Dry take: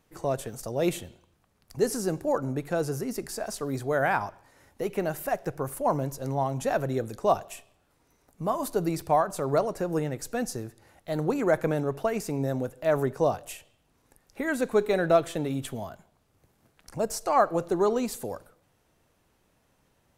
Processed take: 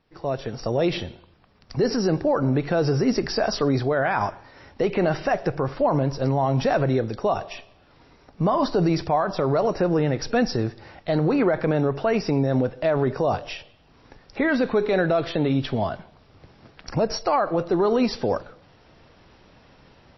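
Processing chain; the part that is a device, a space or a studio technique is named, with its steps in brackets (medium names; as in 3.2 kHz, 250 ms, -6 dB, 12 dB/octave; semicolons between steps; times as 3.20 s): low-bitrate web radio (level rider gain up to 16 dB; peak limiter -12 dBFS, peak gain reduction 11 dB; MP3 24 kbps 16 kHz)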